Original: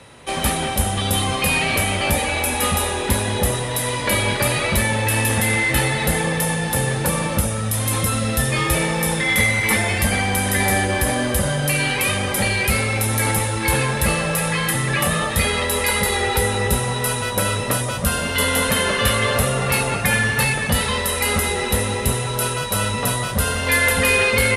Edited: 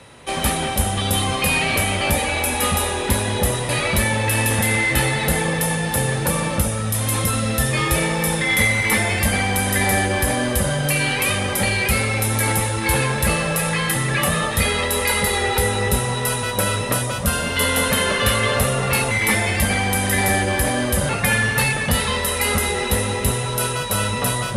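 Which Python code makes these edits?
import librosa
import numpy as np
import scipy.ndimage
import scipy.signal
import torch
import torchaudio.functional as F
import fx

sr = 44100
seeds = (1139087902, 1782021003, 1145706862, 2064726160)

y = fx.edit(x, sr, fx.cut(start_s=3.69, length_s=0.79),
    fx.duplicate(start_s=9.53, length_s=1.98, to_s=19.9), tone=tone)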